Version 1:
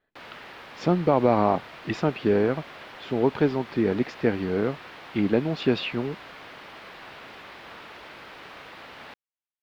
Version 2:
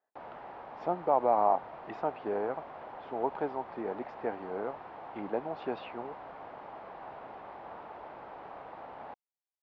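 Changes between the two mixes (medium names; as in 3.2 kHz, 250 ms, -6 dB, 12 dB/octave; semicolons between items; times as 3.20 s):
background: remove high-pass 1.2 kHz 6 dB/octave; master: add band-pass filter 800 Hz, Q 2.6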